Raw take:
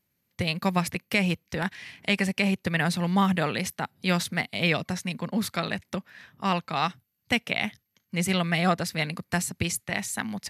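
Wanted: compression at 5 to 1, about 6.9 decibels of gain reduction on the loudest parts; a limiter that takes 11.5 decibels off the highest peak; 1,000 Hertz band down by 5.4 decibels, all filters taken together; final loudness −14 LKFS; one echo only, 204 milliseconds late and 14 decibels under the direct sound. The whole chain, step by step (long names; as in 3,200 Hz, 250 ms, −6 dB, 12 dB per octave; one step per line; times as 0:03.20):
parametric band 1,000 Hz −7.5 dB
downward compressor 5 to 1, threshold −28 dBFS
brickwall limiter −25 dBFS
single-tap delay 204 ms −14 dB
level +22.5 dB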